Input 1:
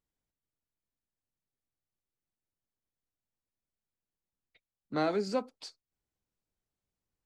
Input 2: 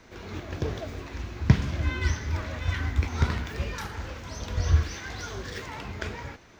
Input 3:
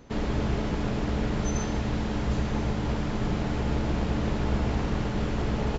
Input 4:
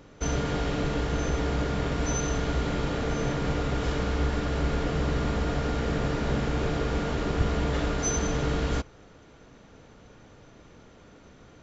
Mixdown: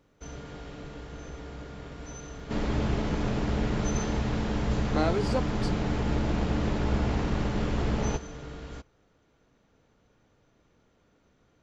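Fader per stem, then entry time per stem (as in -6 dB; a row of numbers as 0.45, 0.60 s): +2.0 dB, off, -0.5 dB, -14.0 dB; 0.00 s, off, 2.40 s, 0.00 s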